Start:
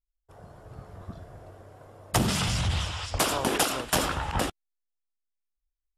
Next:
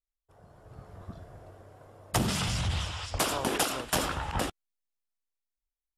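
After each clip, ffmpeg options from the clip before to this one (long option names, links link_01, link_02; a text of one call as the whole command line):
ffmpeg -i in.wav -af "dynaudnorm=framelen=100:gausssize=13:maxgain=6.5dB,volume=-9dB" out.wav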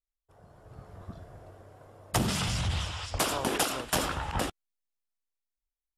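ffmpeg -i in.wav -af anull out.wav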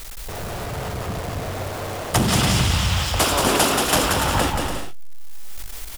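ffmpeg -i in.wav -af "aeval=exprs='val(0)+0.5*0.0224*sgn(val(0))':channel_layout=same,aecho=1:1:180|288|352.8|391.7|415:0.631|0.398|0.251|0.158|0.1,volume=7dB" out.wav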